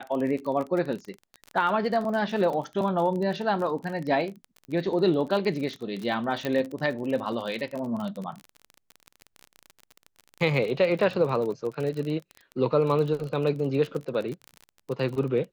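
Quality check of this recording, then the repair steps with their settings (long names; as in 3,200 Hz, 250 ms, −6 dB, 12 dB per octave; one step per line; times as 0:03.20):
surface crackle 31 per second −31 dBFS
0:06.45: click −16 dBFS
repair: click removal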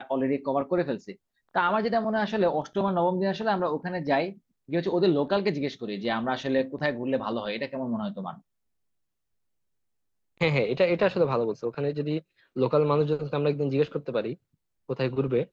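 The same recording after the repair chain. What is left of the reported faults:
none of them is left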